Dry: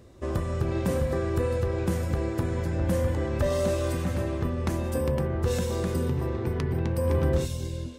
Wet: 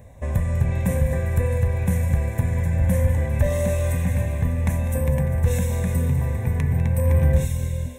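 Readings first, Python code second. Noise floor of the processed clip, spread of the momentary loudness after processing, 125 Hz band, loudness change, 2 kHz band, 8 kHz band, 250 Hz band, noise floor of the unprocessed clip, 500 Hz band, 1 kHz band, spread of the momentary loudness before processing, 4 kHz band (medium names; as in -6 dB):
-30 dBFS, 4 LU, +8.0 dB, +5.5 dB, +4.5 dB, +5.0 dB, +2.0 dB, -33 dBFS, -0.5 dB, -0.5 dB, 4 LU, -3.5 dB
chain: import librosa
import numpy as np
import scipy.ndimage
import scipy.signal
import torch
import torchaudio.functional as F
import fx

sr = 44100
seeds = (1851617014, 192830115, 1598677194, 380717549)

p1 = fx.peak_eq(x, sr, hz=3000.0, db=-12.0, octaves=0.32)
p2 = fx.fixed_phaser(p1, sr, hz=1300.0, stages=6)
p3 = fx.dynamic_eq(p2, sr, hz=740.0, q=1.1, threshold_db=-48.0, ratio=4.0, max_db=-8)
p4 = p3 + fx.echo_thinned(p3, sr, ms=199, feedback_pct=71, hz=1000.0, wet_db=-12, dry=0)
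y = p4 * 10.0 ** (9.0 / 20.0)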